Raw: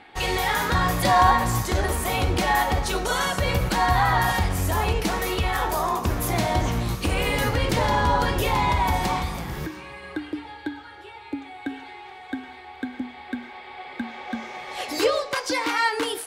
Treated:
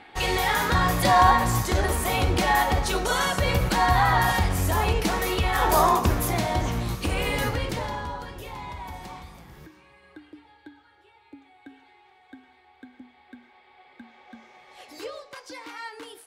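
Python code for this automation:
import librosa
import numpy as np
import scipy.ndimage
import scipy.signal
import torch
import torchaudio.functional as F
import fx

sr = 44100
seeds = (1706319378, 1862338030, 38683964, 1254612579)

y = fx.gain(x, sr, db=fx.line((5.52, 0.0), (5.79, 6.5), (6.42, -2.5), (7.46, -2.5), (8.26, -15.5)))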